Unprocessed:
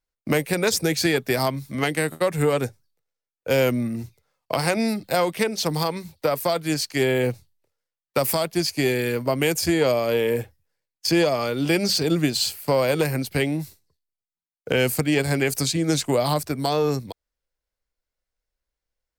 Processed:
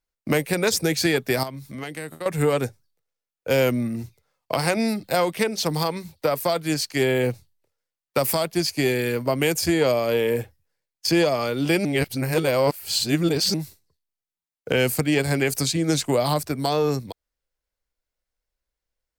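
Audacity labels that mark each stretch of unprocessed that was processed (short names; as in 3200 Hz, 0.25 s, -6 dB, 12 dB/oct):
1.430000	2.260000	compressor 2:1, threshold -37 dBFS
11.850000	13.540000	reverse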